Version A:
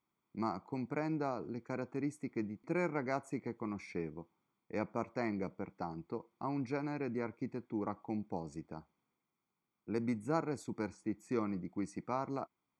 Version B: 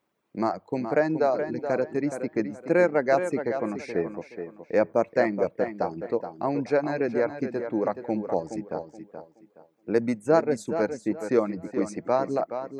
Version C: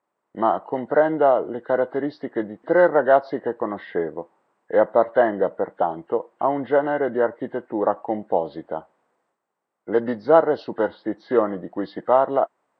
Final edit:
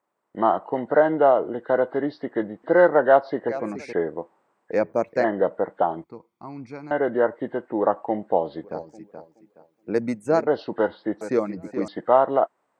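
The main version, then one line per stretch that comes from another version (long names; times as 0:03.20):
C
0:03.49–0:03.93: punch in from B
0:04.72–0:05.24: punch in from B
0:06.04–0:06.91: punch in from A
0:08.64–0:10.47: punch in from B
0:11.21–0:11.88: punch in from B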